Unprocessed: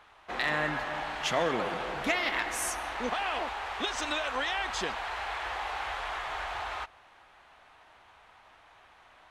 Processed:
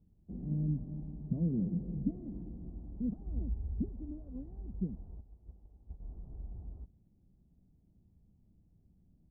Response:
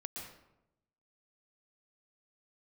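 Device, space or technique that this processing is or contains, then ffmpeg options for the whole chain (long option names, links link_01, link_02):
the neighbour's flat through the wall: -filter_complex "[0:a]lowpass=frequency=230:width=0.5412,lowpass=frequency=230:width=1.3066,equalizer=frequency=180:width_type=o:width=0.48:gain=8,asettb=1/sr,asplit=3[link_01][link_02][link_03];[link_01]atrim=end=3.264[link_04];[link_02]atrim=start=3.26:end=3.89,asetpts=PTS-STARTPTS,afade=type=in:duration=0.004:curve=qsin,afade=type=out:start_time=0.626:duration=0.004:curve=qsin,equalizer=frequency=67:width_type=o:width=2.2:gain=13[link_05];[link_03]atrim=start=3.886[link_06];[link_04][link_05]acrossfade=duration=0.004:curve1=hsin:curve2=qsin[link_07];[link_07][link_06]acrossfade=duration=0.004:curve1=qsin:curve2=hsin,asplit=3[link_08][link_09][link_10];[link_08]afade=type=out:start_time=5.2:duration=0.02[link_11];[link_09]agate=range=-12dB:threshold=-48dB:ratio=16:detection=peak,afade=type=in:start_time=5.2:duration=0.02,afade=type=out:start_time=6.01:duration=0.02[link_12];[link_10]afade=type=in:start_time=6.01:duration=0.02[link_13];[link_11][link_12][link_13]amix=inputs=3:normalize=0,volume=6.5dB"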